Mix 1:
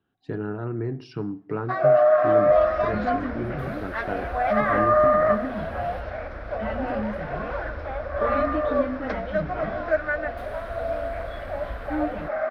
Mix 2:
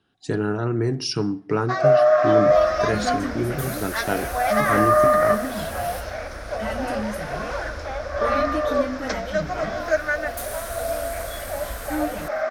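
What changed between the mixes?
speech +5.5 dB; master: remove distance through air 410 m

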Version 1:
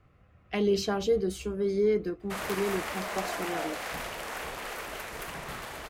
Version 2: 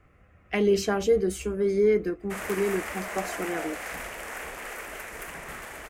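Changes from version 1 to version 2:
speech +4.5 dB; master: add graphic EQ 125/1000/2000/4000/8000 Hz -6/-3/+5/-9/+4 dB

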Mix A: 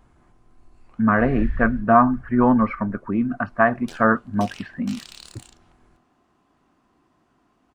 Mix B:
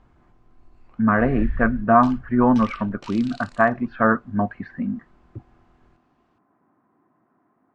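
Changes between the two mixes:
second sound: entry -1.85 s; master: add distance through air 110 m

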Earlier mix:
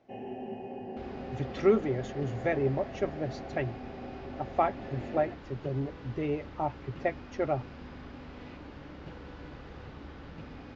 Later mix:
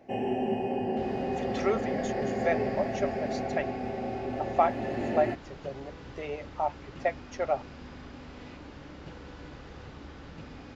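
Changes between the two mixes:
speech: add resonant low shelf 390 Hz -14 dB, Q 1.5; first sound +10.0 dB; master: remove distance through air 120 m

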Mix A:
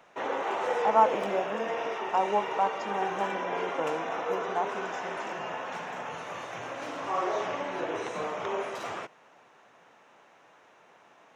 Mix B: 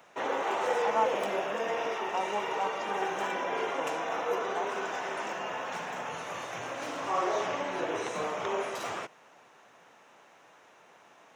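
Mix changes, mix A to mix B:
speech -7.0 dB; master: add treble shelf 5.8 kHz +8.5 dB

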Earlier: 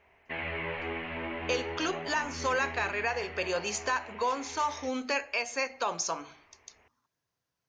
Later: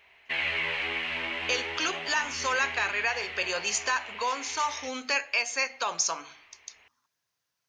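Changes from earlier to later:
background: remove low-pass 2.1 kHz 12 dB/octave; master: add tilt shelf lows -6.5 dB, about 880 Hz

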